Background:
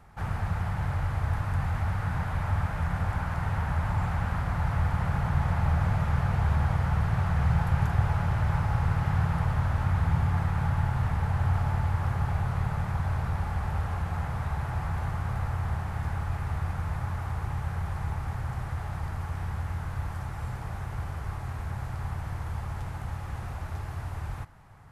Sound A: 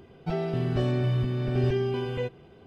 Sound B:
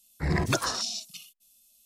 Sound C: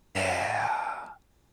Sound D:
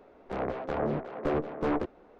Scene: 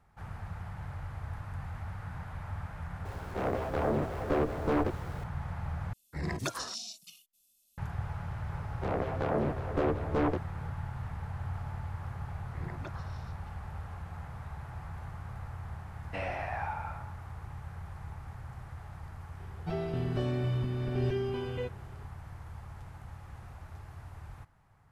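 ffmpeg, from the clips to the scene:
ffmpeg -i bed.wav -i cue0.wav -i cue1.wav -i cue2.wav -i cue3.wav -filter_complex "[4:a]asplit=2[link_01][link_02];[2:a]asplit=2[link_03][link_04];[0:a]volume=-11.5dB[link_05];[link_01]aeval=exprs='val(0)+0.5*0.00531*sgn(val(0))':channel_layout=same[link_06];[link_04]lowpass=2300[link_07];[3:a]lowpass=2600[link_08];[link_05]asplit=2[link_09][link_10];[link_09]atrim=end=5.934[link_11];[link_03]atrim=end=1.85,asetpts=PTS-STARTPTS,volume=-8.5dB[link_12];[link_10]atrim=start=7.776[link_13];[link_06]atrim=end=2.19,asetpts=PTS-STARTPTS,volume=-0.5dB,afade=type=in:duration=0.004:curve=hsin,afade=type=out:start_time=2.186:duration=0.004:curve=hsin,adelay=134505S[link_14];[link_02]atrim=end=2.19,asetpts=PTS-STARTPTS,volume=-0.5dB,afade=type=in:duration=0.004:curve=hsin,afade=type=out:start_time=2.186:duration=0.004:curve=hsin,adelay=8520[link_15];[link_07]atrim=end=1.85,asetpts=PTS-STARTPTS,volume=-17.5dB,afade=type=in:duration=0.004:curve=hsin,afade=type=out:start_time=1.846:duration=0.004:curve=hsin,adelay=12320[link_16];[link_08]atrim=end=1.52,asetpts=PTS-STARTPTS,volume=-8dB,afade=type=in:duration=0.004:curve=hsin,afade=type=out:start_time=1.516:duration=0.004:curve=hsin,adelay=15980[link_17];[1:a]atrim=end=2.66,asetpts=PTS-STARTPTS,volume=-5.5dB,afade=type=in:duration=0.004:curve=hsin,afade=type=out:start_time=2.656:duration=0.004:curve=hsin,adelay=855540S[link_18];[link_11][link_12]acrossfade=duration=0.004:curve1=hsin:curve2=hsin[link_19];[link_19][link_13]acrossfade=duration=0.004:curve1=hsin:curve2=hsin[link_20];[link_20][link_14][link_15][link_16][link_17][link_18]amix=inputs=6:normalize=0" out.wav

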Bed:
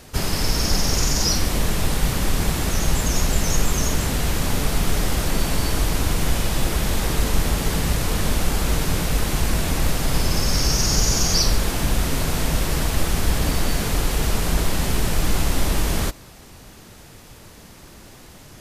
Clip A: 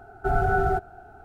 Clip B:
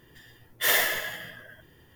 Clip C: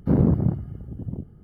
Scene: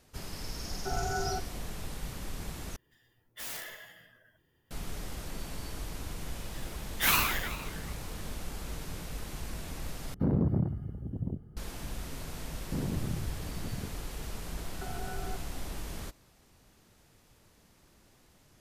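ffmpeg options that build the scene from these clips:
ffmpeg -i bed.wav -i cue0.wav -i cue1.wav -i cue2.wav -filter_complex "[1:a]asplit=2[link_01][link_02];[2:a]asplit=2[link_03][link_04];[3:a]asplit=2[link_05][link_06];[0:a]volume=-18.5dB[link_07];[link_03]aeval=exprs='(mod(8.41*val(0)+1,2)-1)/8.41':channel_layout=same[link_08];[link_04]aeval=exprs='val(0)*sin(2*PI*430*n/s+430*0.85/2.5*sin(2*PI*2.5*n/s))':channel_layout=same[link_09];[link_05]alimiter=limit=-16dB:level=0:latency=1:release=82[link_10];[link_06]acompressor=threshold=-23dB:ratio=6:attack=3.2:release=140:knee=1:detection=peak[link_11];[link_02]acompressor=threshold=-28dB:ratio=6:attack=3.2:release=140:knee=1:detection=peak[link_12];[link_07]asplit=3[link_13][link_14][link_15];[link_13]atrim=end=2.764[link_16];[link_08]atrim=end=1.95,asetpts=PTS-STARTPTS,volume=-15.5dB[link_17];[link_14]atrim=start=4.706:end=10.144[link_18];[link_10]atrim=end=1.43,asetpts=PTS-STARTPTS,volume=-3dB[link_19];[link_15]atrim=start=11.566[link_20];[link_01]atrim=end=1.24,asetpts=PTS-STARTPTS,volume=-11dB,afade=type=in:duration=0.004:curve=hsin,afade=type=out:start_time=1.236:duration=0.004:curve=hsin,adelay=610[link_21];[link_09]atrim=end=1.95,asetpts=PTS-STARTPTS,afade=type=in:duration=0.004:curve=hsin,afade=type=out:start_time=1.946:duration=0.004:curve=hsin,adelay=6390[link_22];[link_11]atrim=end=1.43,asetpts=PTS-STARTPTS,volume=-7dB,afade=type=in:duration=0.004:curve=hsin,afade=type=out:start_time=1.426:duration=0.004:curve=hsin,adelay=12650[link_23];[link_12]atrim=end=1.24,asetpts=PTS-STARTPTS,volume=-10dB,afade=type=in:duration=0.004:curve=hsin,afade=type=out:start_time=1.236:duration=0.004:curve=hsin,adelay=14570[link_24];[link_16][link_17]acrossfade=duration=0.004:curve1=hsin:curve2=hsin[link_25];[link_25][link_18]acrossfade=duration=0.004:curve1=hsin:curve2=hsin[link_26];[link_26][link_19]acrossfade=duration=0.004:curve1=hsin:curve2=hsin[link_27];[link_27][link_20]acrossfade=duration=0.004:curve1=hsin:curve2=hsin[link_28];[link_28][link_21][link_22][link_23][link_24]amix=inputs=5:normalize=0" out.wav

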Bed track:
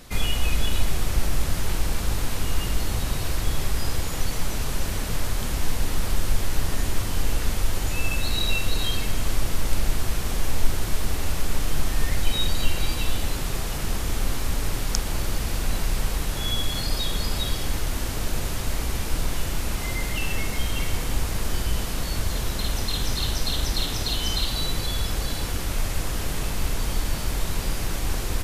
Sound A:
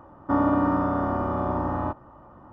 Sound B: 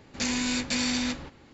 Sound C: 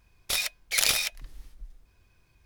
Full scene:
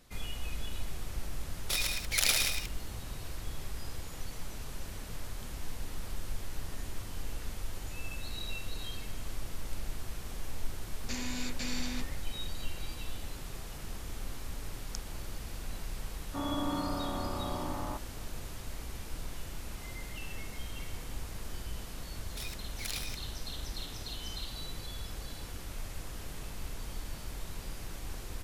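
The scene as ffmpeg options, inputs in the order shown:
ffmpeg -i bed.wav -i cue0.wav -i cue1.wav -i cue2.wav -filter_complex "[3:a]asplit=2[link_01][link_02];[0:a]volume=-15dB[link_03];[link_01]aecho=1:1:110.8|183.7:0.562|0.398[link_04];[1:a]dynaudnorm=framelen=330:gausssize=3:maxgain=4.5dB[link_05];[link_04]atrim=end=2.45,asetpts=PTS-STARTPTS,volume=-5dB,afade=type=in:duration=0.004:curve=hsin,afade=type=out:start_time=2.446:duration=0.004:curve=hsin,adelay=1400[link_06];[2:a]atrim=end=1.53,asetpts=PTS-STARTPTS,volume=-10.5dB,afade=type=in:duration=0.004:curve=hsin,afade=type=out:start_time=1.526:duration=0.004:curve=hsin,adelay=10890[link_07];[link_05]atrim=end=2.52,asetpts=PTS-STARTPTS,volume=-15.5dB,afade=type=in:duration=0.004:curve=hsin,afade=type=out:start_time=2.516:duration=0.004:curve=hsin,adelay=16050[link_08];[link_02]atrim=end=2.45,asetpts=PTS-STARTPTS,volume=-16dB,afade=type=in:duration=0.004:curve=hsin,afade=type=out:start_time=2.446:duration=0.004:curve=hsin,adelay=22070[link_09];[link_03][link_06][link_07][link_08][link_09]amix=inputs=5:normalize=0" out.wav

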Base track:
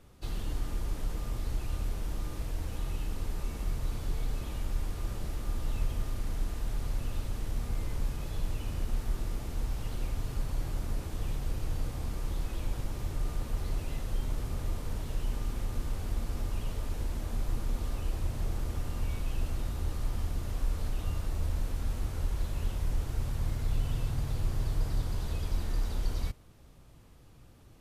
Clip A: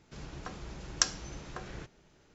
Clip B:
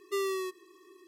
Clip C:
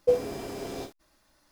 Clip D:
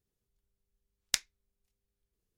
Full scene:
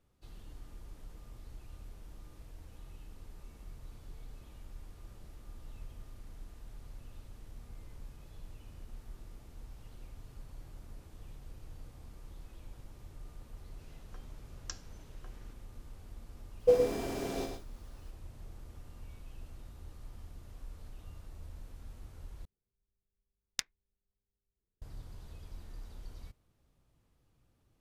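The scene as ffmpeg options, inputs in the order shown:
ffmpeg -i bed.wav -i cue0.wav -i cue1.wav -i cue2.wav -i cue3.wav -filter_complex "[0:a]volume=-16dB[link_01];[3:a]aecho=1:1:111:0.501[link_02];[4:a]adynamicsmooth=sensitivity=7:basefreq=1000[link_03];[link_01]asplit=2[link_04][link_05];[link_04]atrim=end=22.454[link_06];[link_03]atrim=end=2.37,asetpts=PTS-STARTPTS,volume=-4.5dB[link_07];[link_05]atrim=start=24.816[link_08];[1:a]atrim=end=2.34,asetpts=PTS-STARTPTS,volume=-16.5dB,afade=type=in:duration=0.004:curve=hsin,afade=type=out:start_time=2.336:duration=0.004:curve=hsin,adelay=13680[link_09];[link_02]atrim=end=1.51,asetpts=PTS-STARTPTS,volume=-1.5dB,afade=type=in:duration=0.004:curve=hsin,afade=type=out:start_time=1.506:duration=0.004:curve=hsin,adelay=16600[link_10];[link_06][link_07]acrossfade=duration=0.004:curve1=hsin:curve2=hsin[link_11];[link_11][link_08]acrossfade=duration=0.004:curve1=hsin:curve2=hsin[link_12];[link_12][link_09][link_10]amix=inputs=3:normalize=0" out.wav

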